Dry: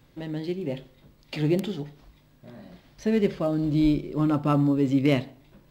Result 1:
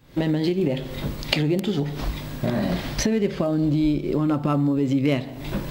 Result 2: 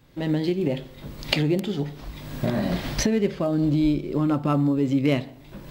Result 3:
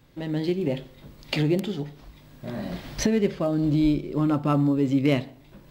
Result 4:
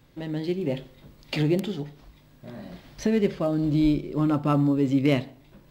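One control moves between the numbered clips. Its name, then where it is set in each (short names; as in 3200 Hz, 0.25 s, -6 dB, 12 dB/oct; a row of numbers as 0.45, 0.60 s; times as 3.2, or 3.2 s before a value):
recorder AGC, rising by: 89, 33, 13, 5.2 dB/s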